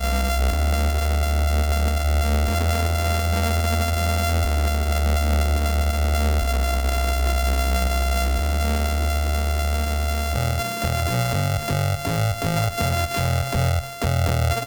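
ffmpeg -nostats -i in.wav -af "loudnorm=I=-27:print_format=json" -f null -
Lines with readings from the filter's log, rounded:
"input_i" : "-22.1",
"input_tp" : "-10.3",
"input_lra" : "1.4",
"input_thresh" : "-32.1",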